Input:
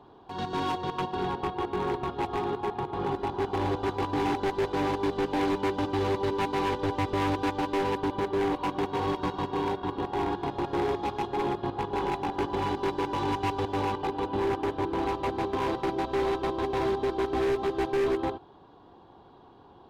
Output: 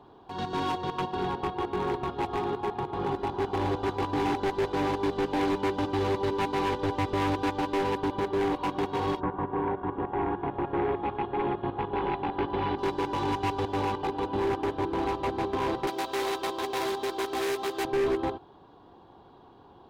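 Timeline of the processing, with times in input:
9.19–12.77 s: low-pass 1.8 kHz -> 3.9 kHz 24 dB/octave
15.87–17.85 s: RIAA curve recording

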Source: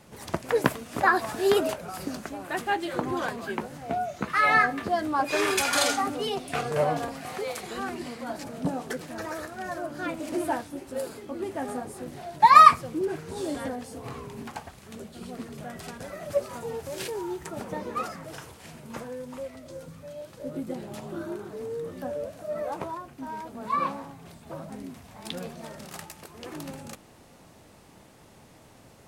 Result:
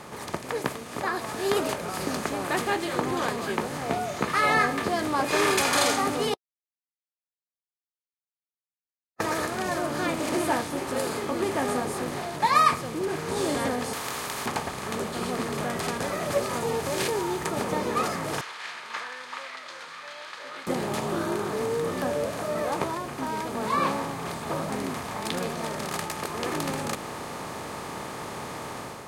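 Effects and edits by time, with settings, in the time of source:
6.34–9.20 s: mute
13.93–14.46 s: spectrum-flattening compressor 10:1
18.41–20.67 s: Chebyshev band-pass 1.6–4.2 kHz
whole clip: spectral levelling over time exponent 0.6; dynamic bell 1.1 kHz, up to -5 dB, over -32 dBFS, Q 0.96; level rider gain up to 7 dB; trim -7 dB

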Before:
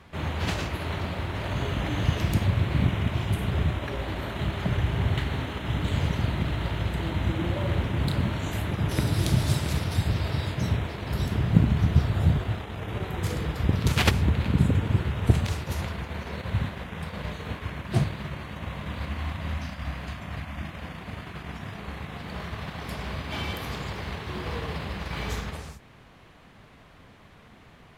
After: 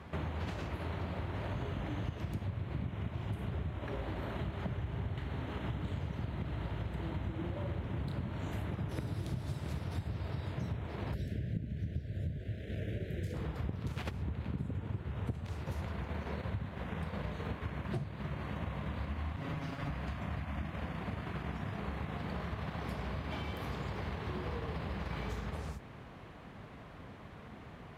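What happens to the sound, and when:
11.14–13.34 s: elliptic band-stop 620–1600 Hz, stop band 50 dB
19.36–19.90 s: comb filter that takes the minimum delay 7.2 ms
whole clip: high-pass 44 Hz; compression 12:1, threshold -37 dBFS; treble shelf 2.2 kHz -10 dB; trim +3 dB

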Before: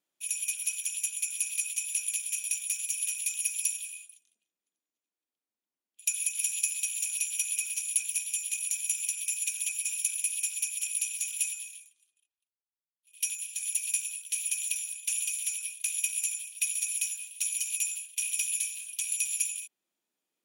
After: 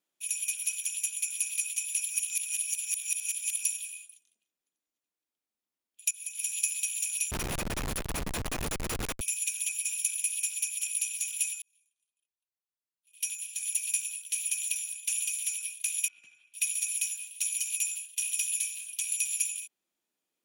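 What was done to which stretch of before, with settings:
2.01–3.63 s: reverse
6.11–6.61 s: fade in, from -18.5 dB
7.31–9.21 s: Schmitt trigger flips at -28.5 dBFS
10.10–10.74 s: high-pass 540 Hz -> 260 Hz 24 dB/octave
11.62–13.66 s: fade in
16.08–16.54 s: low-pass 1.2 kHz
18.05–18.57 s: band-stop 2.3 kHz

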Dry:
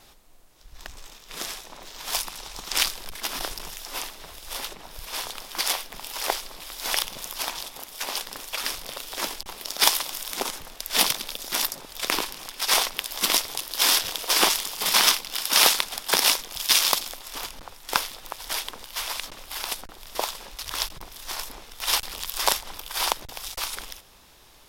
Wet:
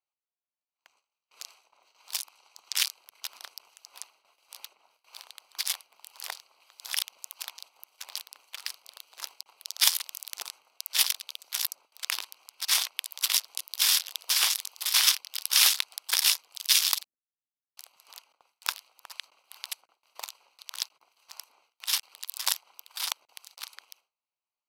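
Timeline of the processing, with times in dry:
17.04–19.10 s: bands offset in time lows, highs 730 ms, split 190 Hz
whole clip: local Wiener filter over 25 samples; Bessel high-pass 2.3 kHz, order 2; gate with hold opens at -51 dBFS; trim -1 dB

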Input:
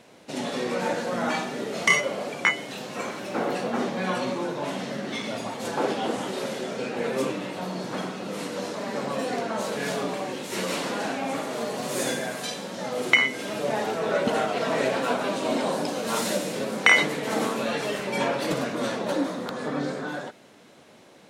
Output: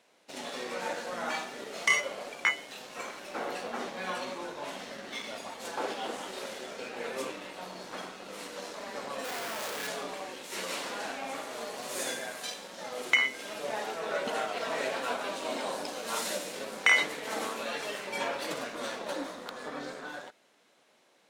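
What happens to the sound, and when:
9.24–9.88 s: Schmitt trigger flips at -41 dBFS
whole clip: high-pass 720 Hz 6 dB/octave; waveshaping leveller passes 1; trim -8 dB

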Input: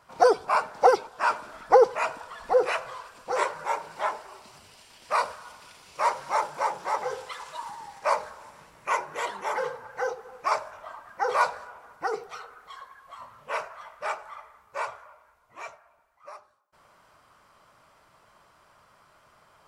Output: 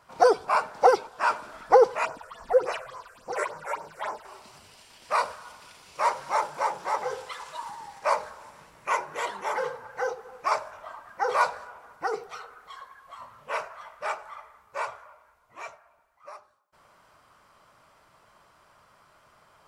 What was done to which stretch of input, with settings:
2.05–4.25 s: phase shifter stages 6, 3.5 Hz, lowest notch 220–3700 Hz

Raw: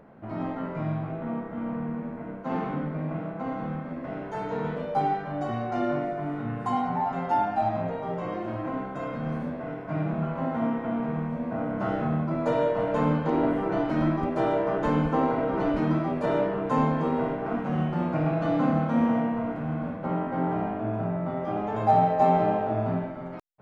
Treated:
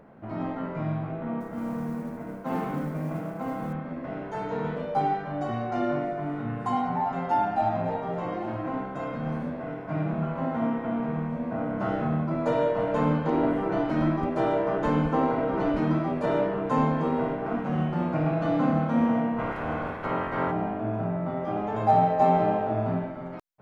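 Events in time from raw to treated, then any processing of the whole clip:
1.40–3.73 s: modulation noise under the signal 31 dB
7.14–7.68 s: echo throw 280 ms, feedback 70%, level -12 dB
19.38–20.50 s: spectral peaks clipped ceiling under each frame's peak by 19 dB

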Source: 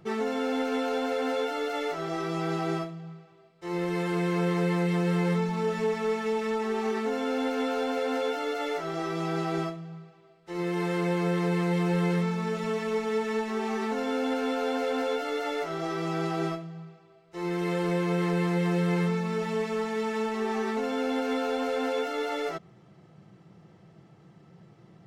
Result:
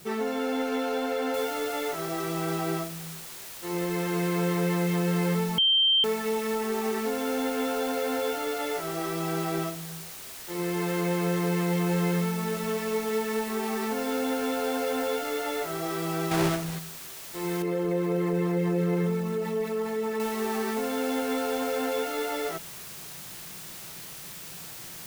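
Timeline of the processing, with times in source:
1.34 s: noise floor step -51 dB -42 dB
5.58–6.04 s: bleep 3.14 kHz -18.5 dBFS
16.31–16.79 s: square wave that keeps the level
17.62–20.20 s: resonances exaggerated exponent 1.5

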